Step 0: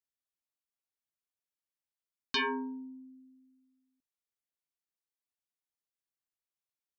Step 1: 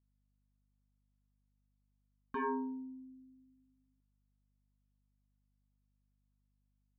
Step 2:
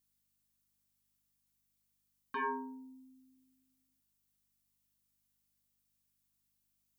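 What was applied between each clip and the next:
low-pass 1.3 kHz 24 dB/octave; hum 50 Hz, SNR 30 dB; trim -1 dB
tilt EQ +4 dB/octave; trim +1.5 dB

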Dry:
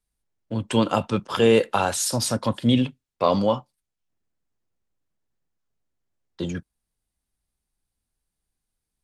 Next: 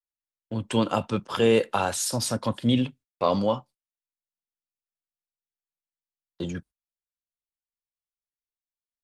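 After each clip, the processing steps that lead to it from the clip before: gate -44 dBFS, range -26 dB; trim -3 dB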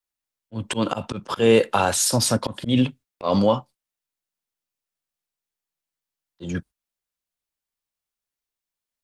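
slow attack 154 ms; in parallel at -2 dB: peak limiter -17 dBFS, peak gain reduction 8 dB; on the sum: trim +2 dB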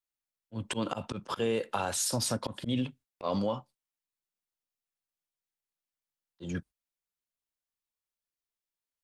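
compression 4:1, threshold -20 dBFS, peak gain reduction 8.5 dB; trim -7 dB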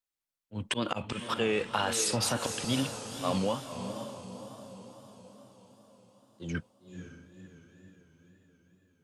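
echo that smears into a reverb 518 ms, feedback 54%, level -8 dB; dynamic bell 2.3 kHz, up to +7 dB, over -52 dBFS, Q 0.98; wow and flutter 97 cents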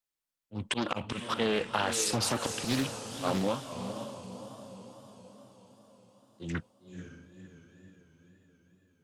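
loudspeaker Doppler distortion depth 0.62 ms

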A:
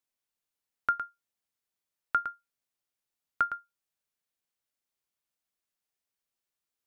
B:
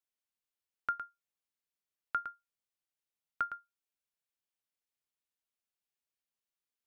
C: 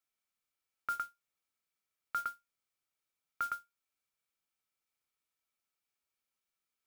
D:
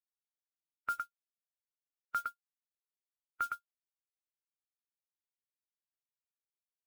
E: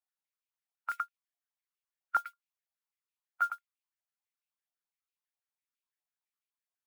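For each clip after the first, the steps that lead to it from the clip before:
peaking EQ 2.8 kHz +2.5 dB 0.83 oct; trim -7 dB
small resonant body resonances 1.3/2.3 kHz, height 12 dB; modulation noise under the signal 18 dB; peak limiter -27.5 dBFS, peak gain reduction 10 dB; trim +2 dB
expander on every frequency bin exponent 2; trim +2.5 dB
step-sequenced high-pass 12 Hz 710–2500 Hz; trim -4 dB

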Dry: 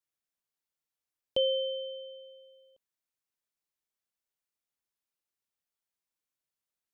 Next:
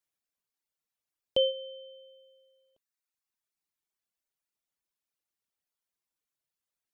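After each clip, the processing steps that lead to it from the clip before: reverb removal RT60 1.4 s; trim +2.5 dB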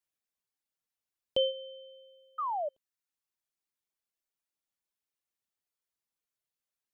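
painted sound fall, 2.38–2.69 s, 560–1300 Hz -30 dBFS; trim -2.5 dB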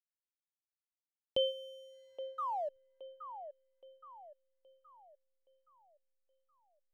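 hysteresis with a dead band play -56.5 dBFS; feedback echo behind a band-pass 821 ms, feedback 43%, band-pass 890 Hz, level -10 dB; trim -3.5 dB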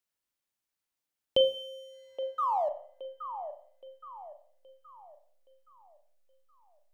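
reverberation RT60 0.50 s, pre-delay 36 ms, DRR 8.5 dB; trim +7.5 dB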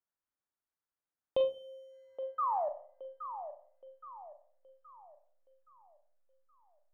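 resonant high shelf 2.1 kHz -11.5 dB, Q 1.5; loudspeaker Doppler distortion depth 0.11 ms; trim -5 dB

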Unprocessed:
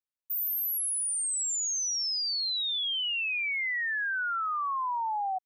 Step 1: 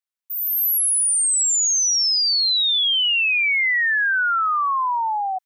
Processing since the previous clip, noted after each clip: level rider gain up to 10 dB; high-pass 900 Hz; trim +1.5 dB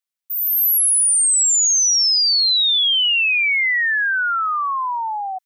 tilt shelf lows -3.5 dB, about 1.4 kHz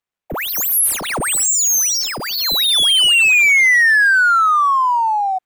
median filter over 9 samples; trim +7.5 dB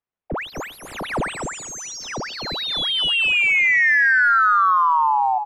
tape spacing loss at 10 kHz 29 dB; feedback delay 252 ms, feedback 17%, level -5.5 dB

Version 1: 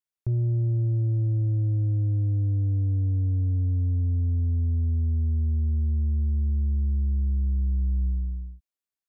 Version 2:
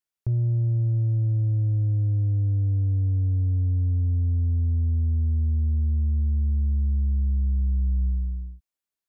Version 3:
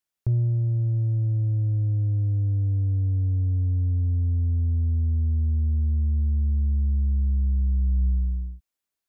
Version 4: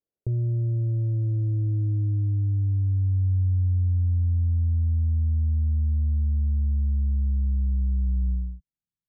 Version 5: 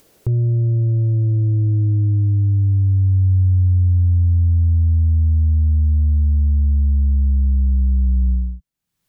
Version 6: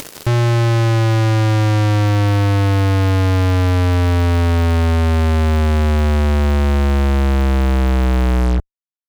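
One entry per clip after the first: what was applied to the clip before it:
dynamic bell 340 Hz, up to -6 dB, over -48 dBFS, Q 2; trim +1.5 dB
gain riding 0.5 s
peak limiter -22 dBFS, peak gain reduction 4.5 dB; low-pass sweep 470 Hz -> 160 Hz, 1.04–3.34 s
upward compressor, threshold -39 dBFS; trim +8 dB
fuzz box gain 50 dB, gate -51 dBFS; loudspeaker Doppler distortion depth 0.3 ms

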